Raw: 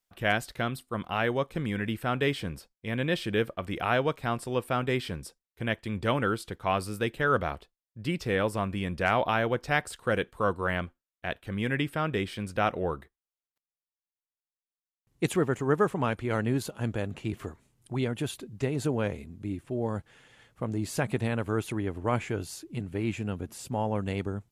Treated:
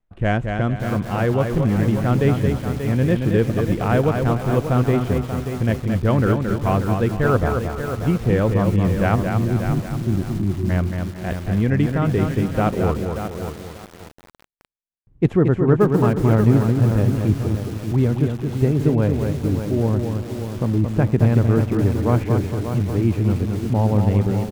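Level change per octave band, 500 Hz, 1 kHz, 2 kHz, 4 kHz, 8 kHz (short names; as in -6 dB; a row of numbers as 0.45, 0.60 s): +8.5 dB, +4.5 dB, +1.0 dB, -1.0 dB, n/a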